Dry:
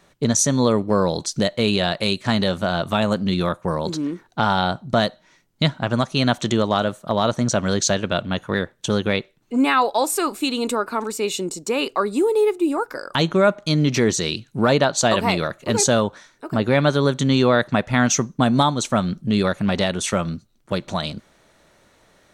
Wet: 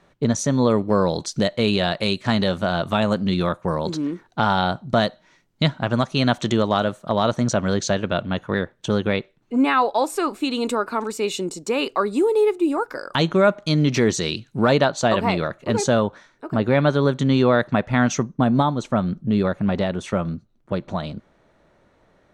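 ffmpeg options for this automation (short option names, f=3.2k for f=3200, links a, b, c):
-af "asetnsamples=n=441:p=0,asendcmd='0.7 lowpass f 5000;7.53 lowpass f 2600;10.51 lowpass f 5500;14.89 lowpass f 2200;18.23 lowpass f 1100',lowpass=f=2.2k:p=1"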